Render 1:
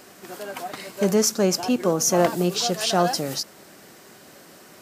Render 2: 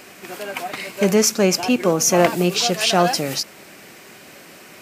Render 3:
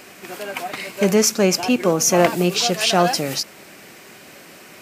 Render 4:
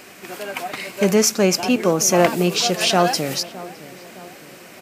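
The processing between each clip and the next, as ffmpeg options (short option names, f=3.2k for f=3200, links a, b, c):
-af "equalizer=f=2.4k:t=o:w=0.61:g=9,volume=3.5dB"
-af anull
-filter_complex "[0:a]asplit=2[a][b];[b]adelay=612,lowpass=f=1.5k:p=1,volume=-17dB,asplit=2[c][d];[d]adelay=612,lowpass=f=1.5k:p=1,volume=0.52,asplit=2[e][f];[f]adelay=612,lowpass=f=1.5k:p=1,volume=0.52,asplit=2[g][h];[h]adelay=612,lowpass=f=1.5k:p=1,volume=0.52,asplit=2[i][j];[j]adelay=612,lowpass=f=1.5k:p=1,volume=0.52[k];[a][c][e][g][i][k]amix=inputs=6:normalize=0"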